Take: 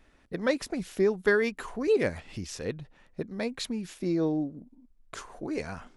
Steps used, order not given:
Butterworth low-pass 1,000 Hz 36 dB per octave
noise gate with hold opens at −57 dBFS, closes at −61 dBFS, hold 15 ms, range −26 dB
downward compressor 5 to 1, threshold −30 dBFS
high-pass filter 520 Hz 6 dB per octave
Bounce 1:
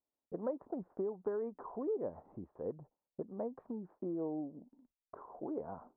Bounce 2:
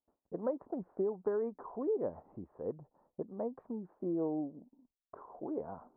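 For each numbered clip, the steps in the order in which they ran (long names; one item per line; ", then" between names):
Butterworth low-pass, then downward compressor, then high-pass filter, then noise gate with hold
high-pass filter, then noise gate with hold, then Butterworth low-pass, then downward compressor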